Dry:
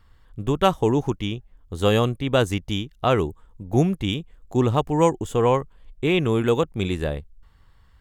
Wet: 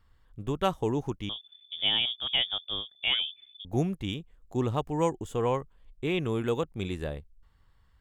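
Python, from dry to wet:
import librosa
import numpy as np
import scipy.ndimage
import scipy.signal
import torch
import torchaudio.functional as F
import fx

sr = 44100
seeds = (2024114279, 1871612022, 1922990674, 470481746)

y = fx.freq_invert(x, sr, carrier_hz=3500, at=(1.29, 3.65))
y = F.gain(torch.from_numpy(y), -8.5).numpy()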